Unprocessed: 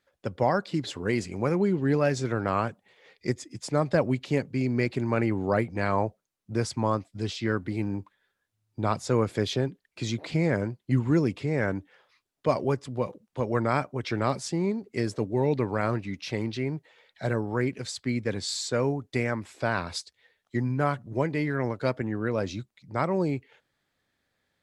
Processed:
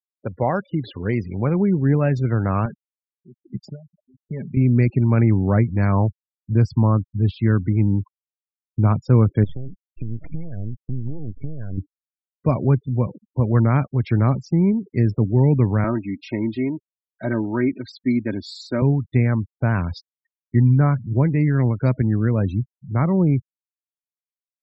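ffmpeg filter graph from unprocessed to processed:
-filter_complex "[0:a]asettb=1/sr,asplit=3[s0][s1][s2];[s0]atrim=end=2.654[s3];[s1]atrim=start=2.65:end=4.57,asetpts=PTS-STARTPTS,afade=t=in:d=0.004:c=qsin,afade=t=out:st=1.916:d=0.004:c=qsin,aecho=1:1:5:0.71,atrim=end_sample=84672,acompressor=threshold=0.0447:ratio=10:attack=3.2:release=140:knee=1:detection=peak,aeval=exprs='val(0)*pow(10,-30*(0.5-0.5*cos(2*PI*1.1*n/s))/20)':c=same[s4];[s2]atrim=start=4.566[s5];[s3][s4]acrossfade=d=0.004:c1=hsin:c2=qsin[s6];[s6][s5]acrossfade=d=0.004:c1=qsin:c2=hsin,asettb=1/sr,asplit=3[s7][s8][s9];[s7]atrim=end=9.444[s10];[s8]atrim=start=9.44:end=11.78,asetpts=PTS-STARTPTS,afade=t=in:d=0.004:c=qsin,afade=t=out:st=2.336:d=0.004:c=qsin,acompressor=threshold=0.0224:ratio=8:attack=3.2:release=140:knee=1:detection=peak,aeval=exprs='max(val(0),0)':c=same[s11];[s9]atrim=start=11.776[s12];[s10][s11]acrossfade=d=0.004:c1=hsin:c2=qsin[s13];[s13][s12]acrossfade=d=0.004:c1=qsin:c2=hsin,asettb=1/sr,asplit=3[s14][s15][s16];[s14]atrim=end=15.844[s17];[s15]atrim=start=15.84:end=18.82,asetpts=PTS-STARTPTS,afade=t=in:d=0.004:c=qsin,afade=t=out:st=2.976:d=0.004:c=qsin,highpass=200,lowpass=6800,aecho=1:1:3.2:0.68,atrim=end_sample=131418[s18];[s16]atrim=start=18.816[s19];[s17][s18]acrossfade=d=0.004:c1=hsin:c2=qsin[s20];[s20][s19]acrossfade=d=0.004:c1=qsin:c2=hsin,lowpass=f=1900:p=1,afftfilt=real='re*gte(hypot(re,im),0.0112)':imag='im*gte(hypot(re,im),0.0112)':win_size=1024:overlap=0.75,asubboost=boost=4.5:cutoff=220,volume=1.5"

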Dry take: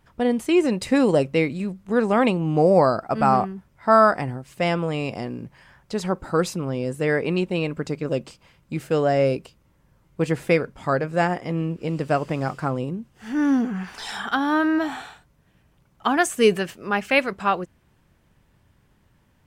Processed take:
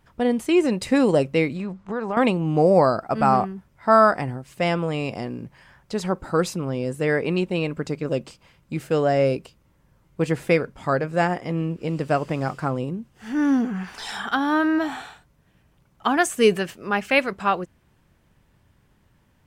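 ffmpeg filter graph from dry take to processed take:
-filter_complex "[0:a]asettb=1/sr,asplit=3[s0][s1][s2];[s0]atrim=end=1.564[s3];[s1]atrim=start=1.56:end=2.17,asetpts=PTS-STARTPTS,afade=t=in:d=0.004:c=qsin,afade=t=out:st=0.606:d=0.004:c=qsin,equalizer=f=1000:w=1:g=9,acompressor=threshold=0.0501:ratio=3:attack=3.2:release=140:knee=1:detection=peak,lowpass=6000[s4];[s2]atrim=start=2.166[s5];[s3][s4]acrossfade=d=0.004:c1=hsin:c2=qsin[s6];[s6][s5]acrossfade=d=0.004:c1=qsin:c2=hsin"

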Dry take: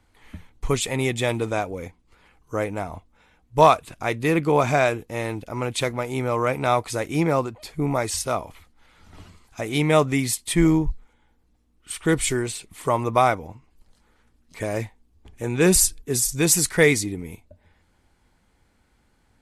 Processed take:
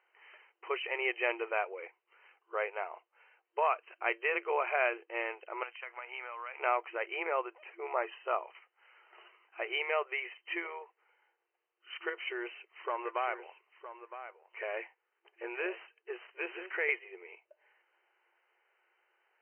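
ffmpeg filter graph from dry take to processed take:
-filter_complex "[0:a]asettb=1/sr,asplit=3[s0][s1][s2];[s0]atrim=end=5.634[s3];[s1]atrim=start=5.63:end=6.6,asetpts=PTS-STARTPTS,afade=t=in:d=0.004:c=qsin,afade=t=out:st=0.966:d=0.004:c=qsin,highpass=900,acompressor=threshold=0.0251:ratio=12:attack=3.2:release=140:knee=1:detection=peak[s4];[s2]atrim=start=6.596[s5];[s3][s4]acrossfade=d=0.004:c1=hsin:c2=qsin[s6];[s6][s5]acrossfade=d=0.004:c1=qsin:c2=hsin,asettb=1/sr,asplit=3[s7][s8][s9];[s7]atrim=end=7.934[s10];[s8]atrim=start=7.93:end=8.43,asetpts=PTS-STARTPTS,afade=t=in:d=0.004:c=qsin,afade=t=out:st=0.496:d=0.004:c=qsin,equalizer=f=2200:t=o:w=0.25:g=-9,bandreject=f=1500:w=20[s11];[s9]atrim=start=8.426[s12];[s10][s11]acrossfade=d=0.004:c1=hsin:c2=qsin[s13];[s13][s12]acrossfade=d=0.004:c1=qsin:c2=hsin,asettb=1/sr,asplit=3[s14][s15][s16];[s14]atrim=end=12.094[s17];[s15]atrim=start=12.09:end=16.89,asetpts=PTS-STARTPTS,afade=t=in:d=0.004:c=qsin,afade=t=out:st=4.796:d=0.004:c=qsin,aeval=exprs='if(lt(val(0),0),0.708*val(0),val(0))':c=same,acompressor=threshold=0.0891:ratio=5:attack=3.2:release=140:knee=1:detection=peak,aecho=1:1:963:0.251,atrim=end_sample=211680[s18];[s16]atrim=start=16.886[s19];[s17][s18]acrossfade=d=0.004:c1=hsin:c2=qsin[s20];[s20][s19]acrossfade=d=0.004:c1=qsin:c2=hsin,alimiter=limit=0.251:level=0:latency=1:release=402,afftfilt=real='re*between(b*sr/4096,340,3100)':imag='im*between(b*sr/4096,340,3100)':win_size=4096:overlap=0.75,tiltshelf=f=870:g=-6,volume=0.473"

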